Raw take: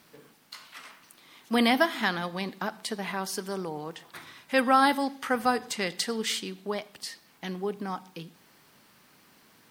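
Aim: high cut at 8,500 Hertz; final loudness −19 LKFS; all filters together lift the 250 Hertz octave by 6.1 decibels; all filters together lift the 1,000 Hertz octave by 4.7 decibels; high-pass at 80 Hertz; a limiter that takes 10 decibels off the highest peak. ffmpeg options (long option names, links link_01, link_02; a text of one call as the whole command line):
ffmpeg -i in.wav -af "highpass=80,lowpass=8500,equalizer=frequency=250:width_type=o:gain=6.5,equalizer=frequency=1000:width_type=o:gain=6,volume=9.5dB,alimiter=limit=-5dB:level=0:latency=1" out.wav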